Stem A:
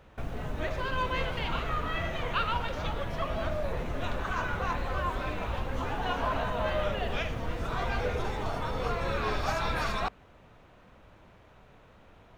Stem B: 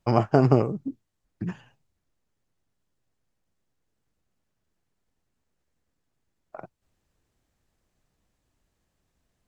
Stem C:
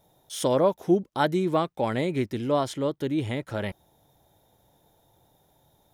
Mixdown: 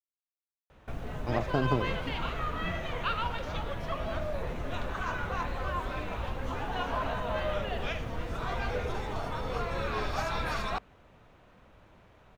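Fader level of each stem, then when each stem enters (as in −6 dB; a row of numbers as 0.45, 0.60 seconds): −2.0 dB, −10.0 dB, muted; 0.70 s, 1.20 s, muted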